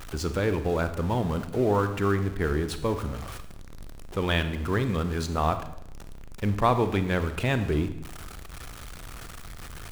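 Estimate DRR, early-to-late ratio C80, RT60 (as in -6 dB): 10.0 dB, 13.5 dB, 0.85 s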